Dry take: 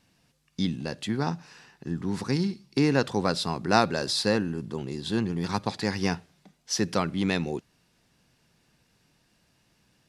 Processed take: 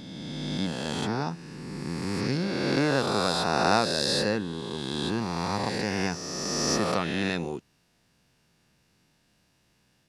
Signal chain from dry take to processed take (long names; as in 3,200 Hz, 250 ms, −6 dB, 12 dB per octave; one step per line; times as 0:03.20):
peak hold with a rise ahead of every peak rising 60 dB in 2.51 s
level −4.5 dB